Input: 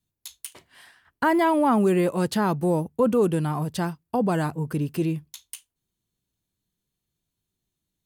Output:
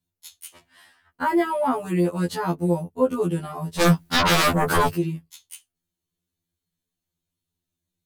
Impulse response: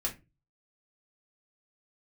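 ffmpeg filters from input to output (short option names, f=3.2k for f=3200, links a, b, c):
-filter_complex "[0:a]asplit=3[a][b][c];[a]afade=t=out:st=3.79:d=0.02[d];[b]aeval=exprs='0.224*sin(PI/2*7.94*val(0)/0.224)':c=same,afade=t=in:st=3.79:d=0.02,afade=t=out:st=4.93:d=0.02[e];[c]afade=t=in:st=4.93:d=0.02[f];[d][e][f]amix=inputs=3:normalize=0,afftfilt=real='re*2*eq(mod(b,4),0)':imag='im*2*eq(mod(b,4),0)':win_size=2048:overlap=0.75"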